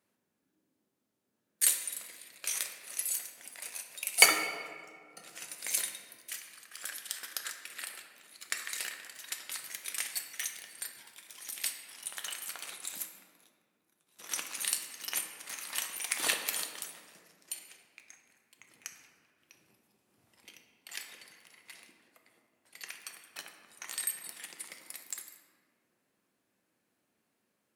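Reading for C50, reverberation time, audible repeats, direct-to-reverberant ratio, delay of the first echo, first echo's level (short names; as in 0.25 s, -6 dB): 7.0 dB, 2.0 s, none, 4.0 dB, none, none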